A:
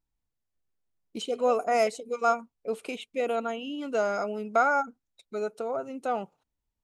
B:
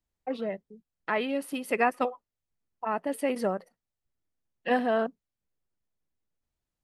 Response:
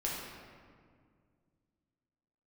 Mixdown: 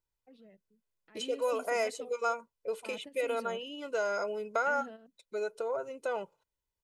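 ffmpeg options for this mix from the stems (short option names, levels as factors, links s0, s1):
-filter_complex "[0:a]lowshelf=f=130:g=-9.5,aecho=1:1:2:0.66,acrossover=split=800|1700[s0][s1][s2];[s0]acompressor=threshold=0.0355:ratio=4[s3];[s1]acompressor=threshold=0.0251:ratio=4[s4];[s2]acompressor=threshold=0.02:ratio=4[s5];[s3][s4][s5]amix=inputs=3:normalize=0,volume=0.708,asplit=2[s6][s7];[1:a]equalizer=f=1000:w=0.71:g=-12.5,alimiter=level_in=2.24:limit=0.0631:level=0:latency=1:release=37,volume=0.447,volume=0.398[s8];[s7]apad=whole_len=301577[s9];[s8][s9]sidechaingate=range=0.282:threshold=0.00398:ratio=16:detection=peak[s10];[s6][s10]amix=inputs=2:normalize=0"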